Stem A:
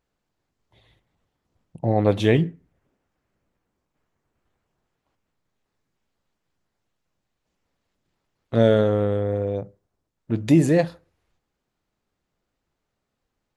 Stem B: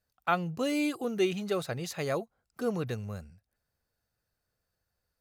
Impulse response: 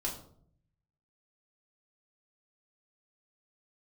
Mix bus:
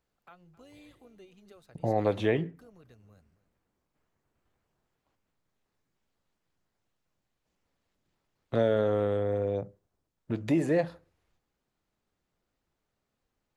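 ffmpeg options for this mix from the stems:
-filter_complex "[0:a]volume=0.708[s0];[1:a]acompressor=threshold=0.00794:ratio=2.5,tremolo=f=190:d=0.519,volume=0.237,asplit=2[s1][s2];[s2]volume=0.126,aecho=0:1:264:1[s3];[s0][s1][s3]amix=inputs=3:normalize=0,acrossover=split=360|2500[s4][s5][s6];[s4]acompressor=threshold=0.0251:ratio=4[s7];[s5]acompressor=threshold=0.0708:ratio=4[s8];[s6]acompressor=threshold=0.00282:ratio=4[s9];[s7][s8][s9]amix=inputs=3:normalize=0"

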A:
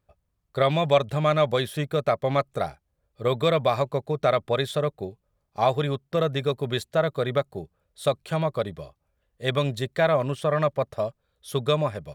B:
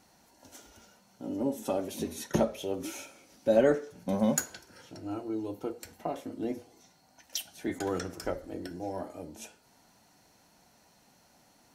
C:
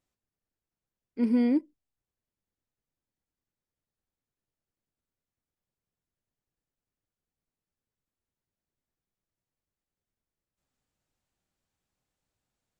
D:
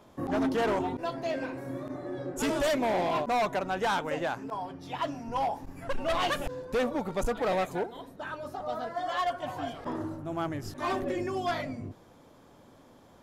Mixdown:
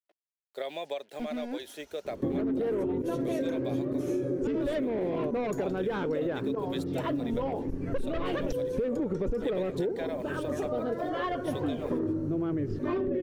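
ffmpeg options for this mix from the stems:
-filter_complex "[0:a]acrusher=bits=7:mix=0:aa=0.5,highpass=f=310:w=0.5412,highpass=f=310:w=1.3066,volume=0.376,asplit=3[s0][s1][s2];[s0]atrim=end=3.99,asetpts=PTS-STARTPTS,afade=t=out:st=3.986:d=0.004:c=hsin[s3];[s1]atrim=start=3.99:end=4.62,asetpts=PTS-STARTPTS,volume=0[s4];[s2]atrim=start=4.62,asetpts=PTS-STARTPTS,afade=t=in:d=0.004:c=hsin[s5];[s3][s4][s5]concat=n=3:v=0:a=1[s6];[1:a]acompressor=threshold=0.0141:ratio=3,adelay=1150,volume=0.631[s7];[2:a]acrusher=bits=3:mix=0:aa=0.5,volume=0.398[s8];[3:a]lowpass=2600,lowshelf=f=580:t=q:w=3:g=8.5,adelay=2050,volume=1.33[s9];[s6][s8]amix=inputs=2:normalize=0,equalizer=f=1200:w=3.1:g=-13,acompressor=threshold=0.0282:ratio=6,volume=1[s10];[s7][s9]amix=inputs=2:normalize=0,alimiter=limit=0.168:level=0:latency=1:release=23,volume=1[s11];[s10][s11]amix=inputs=2:normalize=0,acompressor=threshold=0.0447:ratio=6"

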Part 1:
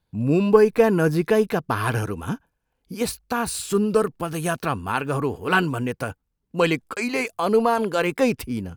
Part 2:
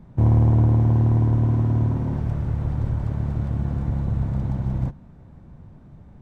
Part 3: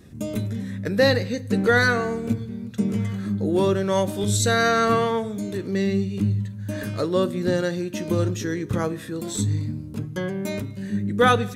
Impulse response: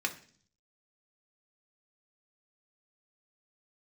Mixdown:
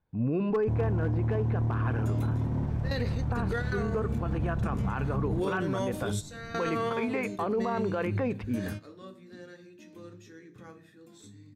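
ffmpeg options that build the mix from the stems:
-filter_complex "[0:a]lowpass=1800,volume=0.596,asplit=3[s0][s1][s2];[s1]volume=0.178[s3];[1:a]adelay=500,volume=0.794[s4];[2:a]adelay=1850,volume=0.422,asplit=2[s5][s6];[s6]volume=0.1[s7];[s2]apad=whole_len=591109[s8];[s5][s8]sidechaingate=range=0.0224:threshold=0.00631:ratio=16:detection=peak[s9];[3:a]atrim=start_sample=2205[s10];[s3][s7]amix=inputs=2:normalize=0[s11];[s11][s10]afir=irnorm=-1:irlink=0[s12];[s0][s4][s9][s12]amix=inputs=4:normalize=0,volume=3.35,asoftclip=hard,volume=0.299,alimiter=limit=0.0841:level=0:latency=1:release=62"

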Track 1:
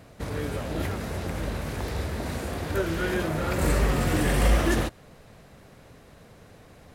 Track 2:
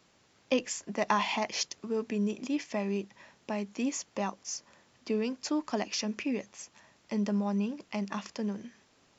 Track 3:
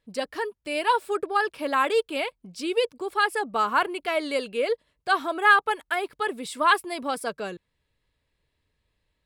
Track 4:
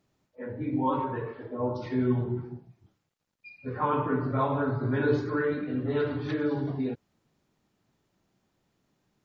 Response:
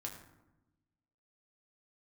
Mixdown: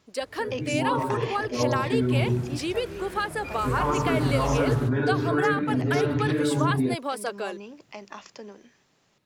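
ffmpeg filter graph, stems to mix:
-filter_complex "[0:a]volume=0.251,afade=t=in:st=1.9:d=0.36:silence=0.281838[s0];[1:a]volume=0.75[s1];[2:a]volume=1.26[s2];[3:a]equalizer=f=140:w=1.5:g=4,dynaudnorm=f=210:g=11:m=2.37,alimiter=limit=0.178:level=0:latency=1:release=83,volume=0.841[s3];[s1][s2]amix=inputs=2:normalize=0,highpass=f=290:w=0.5412,highpass=f=290:w=1.3066,acompressor=threshold=0.0562:ratio=5,volume=1[s4];[s0][s3][s4]amix=inputs=3:normalize=0"

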